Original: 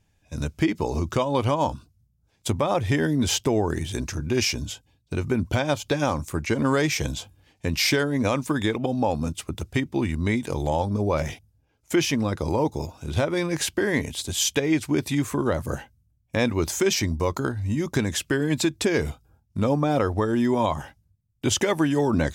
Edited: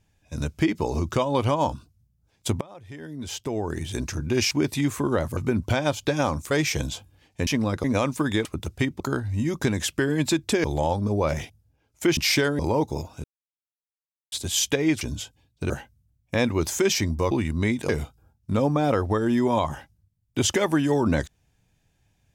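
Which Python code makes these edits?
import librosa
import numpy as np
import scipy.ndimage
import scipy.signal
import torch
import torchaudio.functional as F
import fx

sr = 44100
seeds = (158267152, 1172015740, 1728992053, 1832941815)

y = fx.edit(x, sr, fx.fade_in_from(start_s=2.61, length_s=1.4, curve='qua', floor_db=-22.5),
    fx.swap(start_s=4.51, length_s=0.69, other_s=14.85, other_length_s=0.86),
    fx.cut(start_s=6.34, length_s=0.42),
    fx.swap(start_s=7.72, length_s=0.42, other_s=12.06, other_length_s=0.37),
    fx.cut(start_s=8.75, length_s=0.65),
    fx.swap(start_s=9.95, length_s=0.58, other_s=17.32, other_length_s=1.64),
    fx.silence(start_s=13.08, length_s=1.08), tone=tone)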